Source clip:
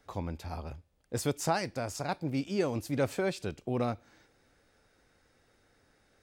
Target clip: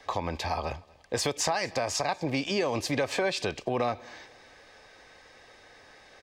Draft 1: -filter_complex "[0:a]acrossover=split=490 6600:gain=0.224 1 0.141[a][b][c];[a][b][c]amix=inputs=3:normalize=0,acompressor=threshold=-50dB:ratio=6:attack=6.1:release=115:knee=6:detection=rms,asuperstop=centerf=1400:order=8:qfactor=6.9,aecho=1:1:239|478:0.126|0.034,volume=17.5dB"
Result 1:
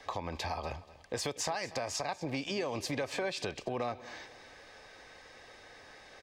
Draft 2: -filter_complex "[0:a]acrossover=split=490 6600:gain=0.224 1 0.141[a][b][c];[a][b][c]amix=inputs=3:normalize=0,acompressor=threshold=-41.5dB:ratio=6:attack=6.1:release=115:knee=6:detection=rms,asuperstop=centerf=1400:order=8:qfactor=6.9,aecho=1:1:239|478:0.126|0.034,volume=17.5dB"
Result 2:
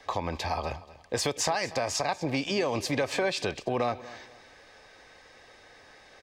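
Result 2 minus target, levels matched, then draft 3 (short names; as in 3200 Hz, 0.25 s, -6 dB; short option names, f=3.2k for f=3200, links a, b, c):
echo-to-direct +7 dB
-filter_complex "[0:a]acrossover=split=490 6600:gain=0.224 1 0.141[a][b][c];[a][b][c]amix=inputs=3:normalize=0,acompressor=threshold=-41.5dB:ratio=6:attack=6.1:release=115:knee=6:detection=rms,asuperstop=centerf=1400:order=8:qfactor=6.9,aecho=1:1:239|478:0.0562|0.0152,volume=17.5dB"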